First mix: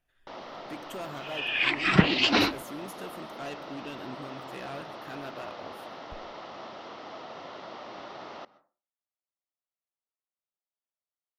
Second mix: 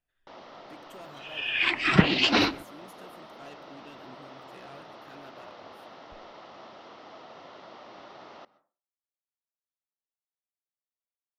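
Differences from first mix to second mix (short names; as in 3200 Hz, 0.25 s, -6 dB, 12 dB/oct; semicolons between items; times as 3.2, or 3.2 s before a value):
speech -9.0 dB; first sound -5.0 dB; second sound: send +9.0 dB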